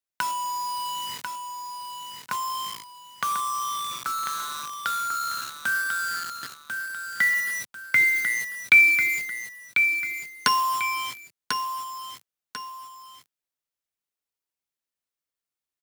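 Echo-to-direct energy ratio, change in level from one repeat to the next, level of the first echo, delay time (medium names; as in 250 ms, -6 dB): -6.0 dB, -9.0 dB, -6.5 dB, 1044 ms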